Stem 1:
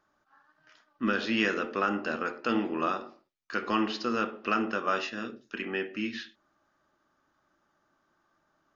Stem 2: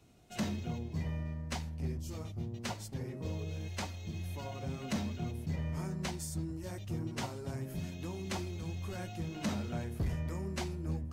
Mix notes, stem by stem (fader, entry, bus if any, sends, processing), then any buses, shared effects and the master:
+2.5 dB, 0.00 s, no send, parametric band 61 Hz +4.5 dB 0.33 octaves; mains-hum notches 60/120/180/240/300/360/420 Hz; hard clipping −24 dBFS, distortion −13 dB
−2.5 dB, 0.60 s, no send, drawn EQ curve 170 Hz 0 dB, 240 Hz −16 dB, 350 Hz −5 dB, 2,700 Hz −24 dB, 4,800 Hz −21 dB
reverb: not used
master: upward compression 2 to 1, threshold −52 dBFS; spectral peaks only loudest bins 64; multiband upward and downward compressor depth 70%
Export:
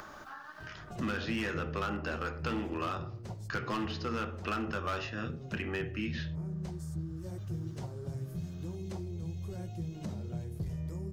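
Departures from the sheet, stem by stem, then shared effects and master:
stem 1 +2.5 dB → −4.0 dB
master: missing spectral peaks only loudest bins 64

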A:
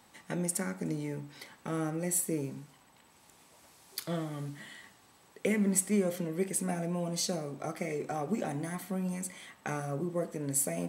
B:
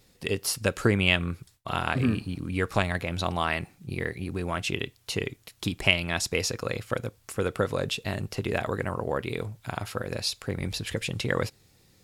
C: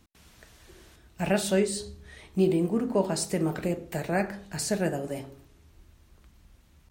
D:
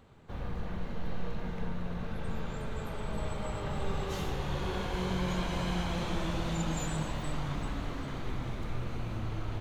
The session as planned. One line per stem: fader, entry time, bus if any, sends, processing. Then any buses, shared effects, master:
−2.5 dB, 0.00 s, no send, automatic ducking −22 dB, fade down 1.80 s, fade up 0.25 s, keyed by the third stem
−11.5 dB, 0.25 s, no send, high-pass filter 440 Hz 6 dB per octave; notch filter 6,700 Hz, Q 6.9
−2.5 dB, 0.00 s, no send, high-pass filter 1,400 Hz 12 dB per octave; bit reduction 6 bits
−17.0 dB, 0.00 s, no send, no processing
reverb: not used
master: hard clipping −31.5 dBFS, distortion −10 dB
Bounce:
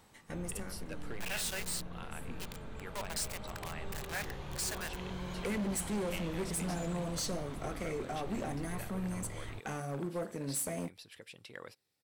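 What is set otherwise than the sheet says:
stem B −11.5 dB → −18.5 dB
stem D −17.0 dB → −9.0 dB

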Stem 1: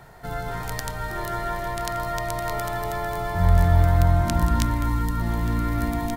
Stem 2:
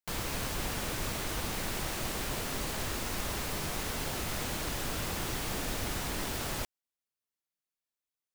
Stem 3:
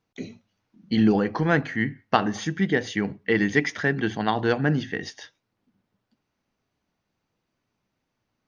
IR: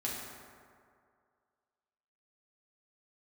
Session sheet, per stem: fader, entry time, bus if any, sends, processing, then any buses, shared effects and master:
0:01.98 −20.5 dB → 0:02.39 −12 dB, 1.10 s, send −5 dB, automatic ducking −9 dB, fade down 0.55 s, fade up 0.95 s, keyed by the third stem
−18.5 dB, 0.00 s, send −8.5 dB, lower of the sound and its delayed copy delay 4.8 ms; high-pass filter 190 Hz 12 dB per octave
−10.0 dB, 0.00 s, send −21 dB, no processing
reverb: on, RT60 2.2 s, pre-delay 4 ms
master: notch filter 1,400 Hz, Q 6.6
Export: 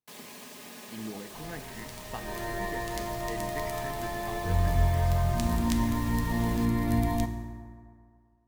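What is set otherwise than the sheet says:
stem 1 −20.5 dB → −14.0 dB
stem 2 −18.5 dB → −10.5 dB
stem 3 −10.0 dB → −20.5 dB

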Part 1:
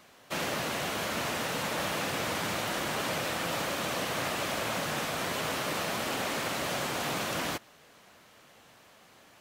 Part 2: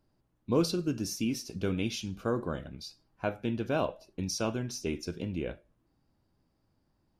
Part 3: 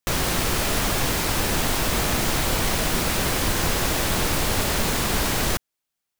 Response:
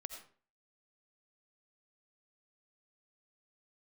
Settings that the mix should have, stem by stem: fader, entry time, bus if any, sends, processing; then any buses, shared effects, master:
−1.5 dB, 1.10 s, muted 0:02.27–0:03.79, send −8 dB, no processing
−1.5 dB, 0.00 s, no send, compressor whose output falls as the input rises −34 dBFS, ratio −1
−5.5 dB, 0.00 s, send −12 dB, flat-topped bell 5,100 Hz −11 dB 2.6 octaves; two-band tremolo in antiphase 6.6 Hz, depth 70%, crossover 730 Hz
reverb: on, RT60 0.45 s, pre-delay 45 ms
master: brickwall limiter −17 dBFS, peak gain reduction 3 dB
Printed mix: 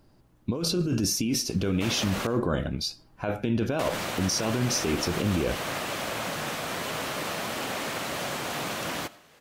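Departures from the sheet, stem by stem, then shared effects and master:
stem 1: entry 1.10 s → 1.50 s
stem 2 −1.5 dB → +10.5 dB
stem 3: muted

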